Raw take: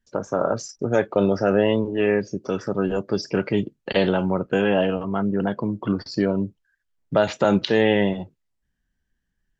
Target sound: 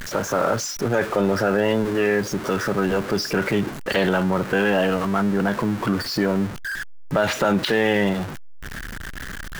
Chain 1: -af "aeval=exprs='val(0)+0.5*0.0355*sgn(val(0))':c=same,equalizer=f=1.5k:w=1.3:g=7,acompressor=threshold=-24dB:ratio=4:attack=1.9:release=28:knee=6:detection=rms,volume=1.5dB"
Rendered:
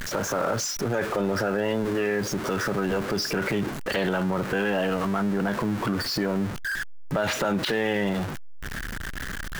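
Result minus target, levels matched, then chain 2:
compressor: peak gain reduction +6 dB
-af "aeval=exprs='val(0)+0.5*0.0355*sgn(val(0))':c=same,equalizer=f=1.5k:w=1.3:g=7,acompressor=threshold=-16dB:ratio=4:attack=1.9:release=28:knee=6:detection=rms,volume=1.5dB"

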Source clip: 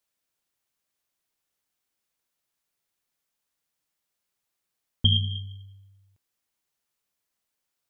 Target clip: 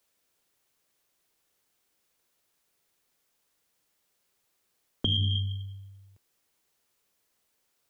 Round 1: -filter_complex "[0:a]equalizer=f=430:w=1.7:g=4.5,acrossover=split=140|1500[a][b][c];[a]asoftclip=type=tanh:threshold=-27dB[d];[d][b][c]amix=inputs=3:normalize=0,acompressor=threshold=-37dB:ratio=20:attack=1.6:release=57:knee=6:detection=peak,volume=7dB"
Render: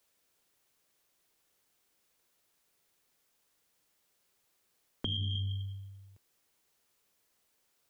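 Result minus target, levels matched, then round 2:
compressor: peak gain reduction +8 dB
-filter_complex "[0:a]equalizer=f=430:w=1.7:g=4.5,acrossover=split=140|1500[a][b][c];[a]asoftclip=type=tanh:threshold=-27dB[d];[d][b][c]amix=inputs=3:normalize=0,acompressor=threshold=-28.5dB:ratio=20:attack=1.6:release=57:knee=6:detection=peak,volume=7dB"

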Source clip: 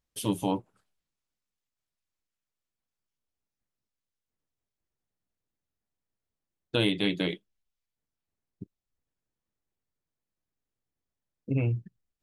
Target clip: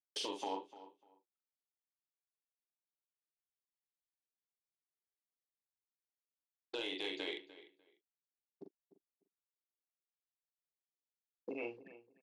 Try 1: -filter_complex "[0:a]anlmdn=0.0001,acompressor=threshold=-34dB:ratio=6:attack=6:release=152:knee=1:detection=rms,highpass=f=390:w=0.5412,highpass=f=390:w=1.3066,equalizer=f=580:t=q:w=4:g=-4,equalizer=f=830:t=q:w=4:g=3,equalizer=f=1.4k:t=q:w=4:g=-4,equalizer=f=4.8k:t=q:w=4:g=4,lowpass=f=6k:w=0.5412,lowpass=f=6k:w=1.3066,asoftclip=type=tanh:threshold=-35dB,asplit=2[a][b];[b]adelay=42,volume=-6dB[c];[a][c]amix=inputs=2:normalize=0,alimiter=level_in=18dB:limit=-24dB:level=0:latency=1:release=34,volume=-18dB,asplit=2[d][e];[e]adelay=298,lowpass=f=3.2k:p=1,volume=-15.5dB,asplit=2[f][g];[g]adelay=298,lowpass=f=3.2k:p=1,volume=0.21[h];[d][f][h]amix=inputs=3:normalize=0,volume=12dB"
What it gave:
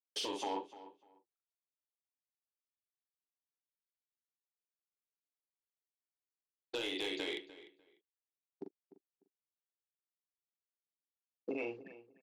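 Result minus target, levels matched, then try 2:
compressor: peak gain reduction -6.5 dB
-filter_complex "[0:a]anlmdn=0.0001,acompressor=threshold=-41.5dB:ratio=6:attack=6:release=152:knee=1:detection=rms,highpass=f=390:w=0.5412,highpass=f=390:w=1.3066,equalizer=f=580:t=q:w=4:g=-4,equalizer=f=830:t=q:w=4:g=3,equalizer=f=1.4k:t=q:w=4:g=-4,equalizer=f=4.8k:t=q:w=4:g=4,lowpass=f=6k:w=0.5412,lowpass=f=6k:w=1.3066,asoftclip=type=tanh:threshold=-35dB,asplit=2[a][b];[b]adelay=42,volume=-6dB[c];[a][c]amix=inputs=2:normalize=0,alimiter=level_in=18dB:limit=-24dB:level=0:latency=1:release=34,volume=-18dB,asplit=2[d][e];[e]adelay=298,lowpass=f=3.2k:p=1,volume=-15.5dB,asplit=2[f][g];[g]adelay=298,lowpass=f=3.2k:p=1,volume=0.21[h];[d][f][h]amix=inputs=3:normalize=0,volume=12dB"

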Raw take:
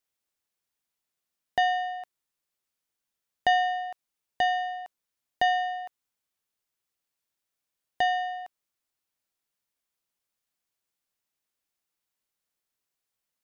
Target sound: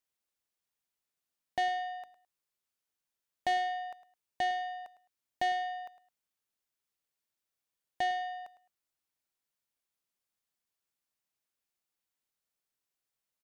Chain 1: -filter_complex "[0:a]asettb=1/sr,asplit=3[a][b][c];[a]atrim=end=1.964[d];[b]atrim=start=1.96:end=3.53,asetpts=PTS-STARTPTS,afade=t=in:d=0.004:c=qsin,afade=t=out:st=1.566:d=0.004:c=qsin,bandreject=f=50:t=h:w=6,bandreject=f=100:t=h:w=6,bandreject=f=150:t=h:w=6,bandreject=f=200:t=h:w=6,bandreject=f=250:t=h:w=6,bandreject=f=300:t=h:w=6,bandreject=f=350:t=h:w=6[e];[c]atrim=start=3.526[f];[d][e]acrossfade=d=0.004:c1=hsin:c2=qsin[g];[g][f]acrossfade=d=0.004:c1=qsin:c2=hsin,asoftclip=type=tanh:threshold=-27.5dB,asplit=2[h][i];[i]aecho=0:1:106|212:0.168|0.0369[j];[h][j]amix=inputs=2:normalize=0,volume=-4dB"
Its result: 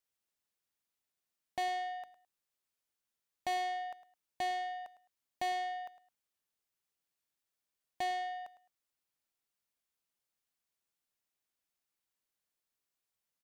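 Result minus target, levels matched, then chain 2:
soft clip: distortion +7 dB
-filter_complex "[0:a]asettb=1/sr,asplit=3[a][b][c];[a]atrim=end=1.964[d];[b]atrim=start=1.96:end=3.53,asetpts=PTS-STARTPTS,afade=t=in:d=0.004:c=qsin,afade=t=out:st=1.566:d=0.004:c=qsin,bandreject=f=50:t=h:w=6,bandreject=f=100:t=h:w=6,bandreject=f=150:t=h:w=6,bandreject=f=200:t=h:w=6,bandreject=f=250:t=h:w=6,bandreject=f=300:t=h:w=6,bandreject=f=350:t=h:w=6[e];[c]atrim=start=3.526[f];[d][e]acrossfade=d=0.004:c1=hsin:c2=qsin[g];[g][f]acrossfade=d=0.004:c1=qsin:c2=hsin,asoftclip=type=tanh:threshold=-20dB,asplit=2[h][i];[i]aecho=0:1:106|212:0.168|0.0369[j];[h][j]amix=inputs=2:normalize=0,volume=-4dB"

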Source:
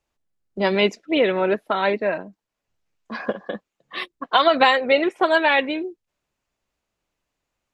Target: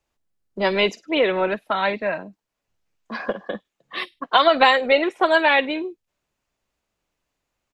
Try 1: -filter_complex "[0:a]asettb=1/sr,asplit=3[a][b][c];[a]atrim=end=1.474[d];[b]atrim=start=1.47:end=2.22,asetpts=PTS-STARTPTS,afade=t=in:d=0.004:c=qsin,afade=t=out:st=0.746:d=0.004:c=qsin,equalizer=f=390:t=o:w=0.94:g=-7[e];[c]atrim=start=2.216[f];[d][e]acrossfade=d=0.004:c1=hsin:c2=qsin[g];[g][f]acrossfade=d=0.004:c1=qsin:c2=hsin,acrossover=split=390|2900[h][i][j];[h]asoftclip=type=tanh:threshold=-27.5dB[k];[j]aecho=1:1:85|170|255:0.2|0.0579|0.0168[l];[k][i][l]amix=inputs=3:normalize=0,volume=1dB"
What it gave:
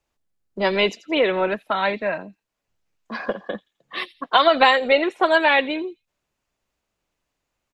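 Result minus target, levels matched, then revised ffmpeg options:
echo 34 ms late
-filter_complex "[0:a]asettb=1/sr,asplit=3[a][b][c];[a]atrim=end=1.474[d];[b]atrim=start=1.47:end=2.22,asetpts=PTS-STARTPTS,afade=t=in:d=0.004:c=qsin,afade=t=out:st=0.746:d=0.004:c=qsin,equalizer=f=390:t=o:w=0.94:g=-7[e];[c]atrim=start=2.216[f];[d][e]acrossfade=d=0.004:c1=hsin:c2=qsin[g];[g][f]acrossfade=d=0.004:c1=qsin:c2=hsin,acrossover=split=390|2900[h][i][j];[h]asoftclip=type=tanh:threshold=-27.5dB[k];[j]aecho=1:1:51|102|153:0.2|0.0579|0.0168[l];[k][i][l]amix=inputs=3:normalize=0,volume=1dB"

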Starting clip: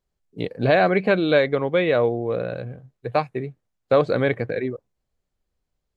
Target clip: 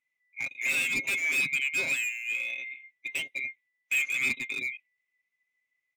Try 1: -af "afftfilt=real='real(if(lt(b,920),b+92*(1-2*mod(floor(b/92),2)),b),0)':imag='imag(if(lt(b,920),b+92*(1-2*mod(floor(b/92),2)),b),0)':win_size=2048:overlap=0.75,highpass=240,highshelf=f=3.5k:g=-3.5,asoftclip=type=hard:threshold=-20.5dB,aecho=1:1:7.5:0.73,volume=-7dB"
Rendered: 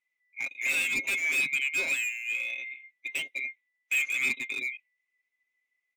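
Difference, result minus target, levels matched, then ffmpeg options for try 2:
125 Hz band -6.0 dB
-af "afftfilt=real='real(if(lt(b,920),b+92*(1-2*mod(floor(b/92),2)),b),0)':imag='imag(if(lt(b,920),b+92*(1-2*mod(floor(b/92),2)),b),0)':win_size=2048:overlap=0.75,highpass=110,highshelf=f=3.5k:g=-3.5,asoftclip=type=hard:threshold=-20.5dB,aecho=1:1:7.5:0.73,volume=-7dB"

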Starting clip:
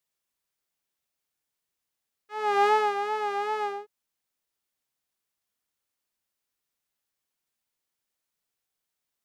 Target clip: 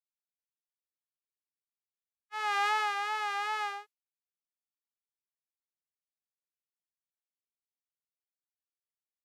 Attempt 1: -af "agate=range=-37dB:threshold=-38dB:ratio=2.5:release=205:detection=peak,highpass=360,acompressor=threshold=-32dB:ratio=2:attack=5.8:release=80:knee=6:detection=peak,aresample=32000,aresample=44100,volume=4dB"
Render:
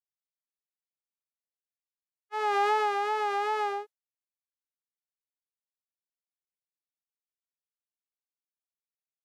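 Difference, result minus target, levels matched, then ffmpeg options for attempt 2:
500 Hz band +12.5 dB
-af "agate=range=-37dB:threshold=-38dB:ratio=2.5:release=205:detection=peak,highpass=1.3k,acompressor=threshold=-32dB:ratio=2:attack=5.8:release=80:knee=6:detection=peak,aresample=32000,aresample=44100,volume=4dB"

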